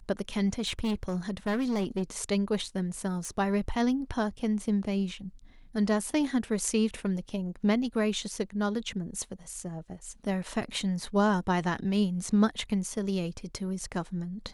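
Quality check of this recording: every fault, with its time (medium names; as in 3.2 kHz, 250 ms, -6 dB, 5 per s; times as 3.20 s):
0.53–2.03 s: clipped -25 dBFS
3.25 s: pop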